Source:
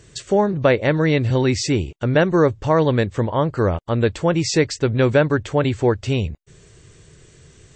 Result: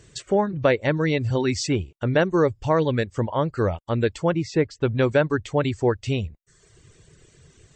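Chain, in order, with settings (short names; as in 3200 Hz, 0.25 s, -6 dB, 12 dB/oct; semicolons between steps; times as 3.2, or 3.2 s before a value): reverb removal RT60 0.8 s; 4.32–4.82 LPF 1400 Hz 6 dB/oct; gain -3 dB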